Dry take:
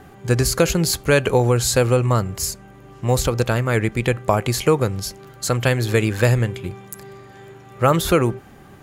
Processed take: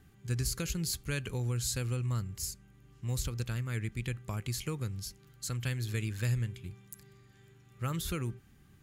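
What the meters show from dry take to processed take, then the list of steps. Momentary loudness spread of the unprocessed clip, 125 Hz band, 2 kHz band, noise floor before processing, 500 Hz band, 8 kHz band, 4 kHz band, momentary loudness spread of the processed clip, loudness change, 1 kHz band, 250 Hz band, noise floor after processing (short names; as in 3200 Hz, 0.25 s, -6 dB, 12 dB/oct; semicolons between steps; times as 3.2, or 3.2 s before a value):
13 LU, -13.0 dB, -18.0 dB, -44 dBFS, -25.5 dB, -13.0 dB, -14.0 dB, 11 LU, -16.0 dB, -24.0 dB, -17.5 dB, -60 dBFS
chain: passive tone stack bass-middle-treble 6-0-2; gain +1.5 dB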